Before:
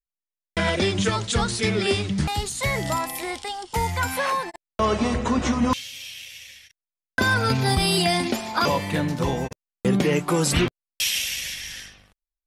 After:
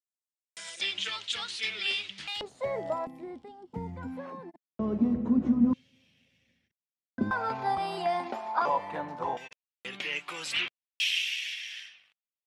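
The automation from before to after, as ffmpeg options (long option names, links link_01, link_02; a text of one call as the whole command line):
ffmpeg -i in.wav -af "asetnsamples=nb_out_samples=441:pad=0,asendcmd='0.81 bandpass f 3000;2.41 bandpass f 580;3.07 bandpass f 230;7.31 bandpass f 870;9.37 bandpass f 2700',bandpass=frequency=7600:width_type=q:width=2.4:csg=0" out.wav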